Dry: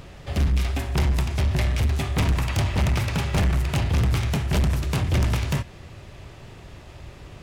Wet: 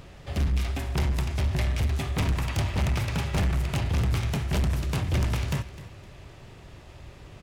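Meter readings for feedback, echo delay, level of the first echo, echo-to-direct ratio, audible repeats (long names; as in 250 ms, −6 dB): 29%, 257 ms, −16.0 dB, −15.5 dB, 2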